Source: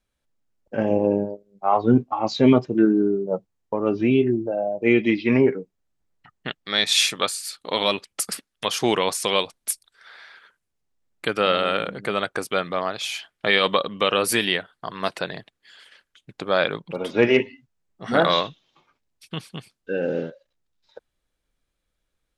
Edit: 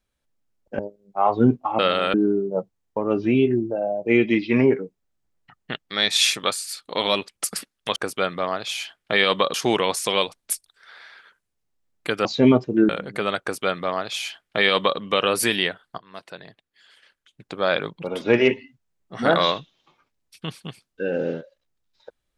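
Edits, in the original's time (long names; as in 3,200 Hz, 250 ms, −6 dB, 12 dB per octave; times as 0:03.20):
0:00.79–0:01.26: remove
0:02.26–0:02.90: swap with 0:11.43–0:11.78
0:12.30–0:13.88: duplicate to 0:08.72
0:14.87–0:16.81: fade in, from −19 dB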